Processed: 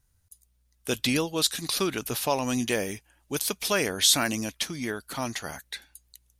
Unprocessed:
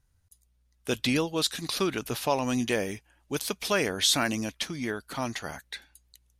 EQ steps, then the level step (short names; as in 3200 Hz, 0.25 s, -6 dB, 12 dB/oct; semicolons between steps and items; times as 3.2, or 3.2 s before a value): high shelf 6500 Hz +9 dB; 0.0 dB